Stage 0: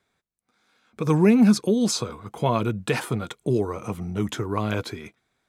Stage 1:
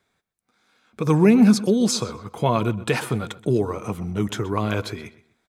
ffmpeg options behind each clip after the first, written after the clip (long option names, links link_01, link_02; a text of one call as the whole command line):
ffmpeg -i in.wav -filter_complex "[0:a]asplit=2[link_01][link_02];[link_02]adelay=126,lowpass=frequency=4600:poles=1,volume=-16.5dB,asplit=2[link_03][link_04];[link_04]adelay=126,lowpass=frequency=4600:poles=1,volume=0.3,asplit=2[link_05][link_06];[link_06]adelay=126,lowpass=frequency=4600:poles=1,volume=0.3[link_07];[link_01][link_03][link_05][link_07]amix=inputs=4:normalize=0,volume=2dB" out.wav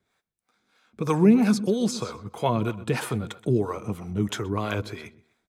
ffmpeg -i in.wav -filter_complex "[0:a]acrossover=split=420[link_01][link_02];[link_01]aeval=exprs='val(0)*(1-0.7/2+0.7/2*cos(2*PI*3.1*n/s))':channel_layout=same[link_03];[link_02]aeval=exprs='val(0)*(1-0.7/2-0.7/2*cos(2*PI*3.1*n/s))':channel_layout=same[link_04];[link_03][link_04]amix=inputs=2:normalize=0" out.wav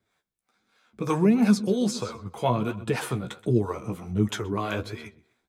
ffmpeg -i in.wav -af "flanger=delay=8.7:depth=7.5:regen=33:speed=1.4:shape=sinusoidal,volume=3dB" out.wav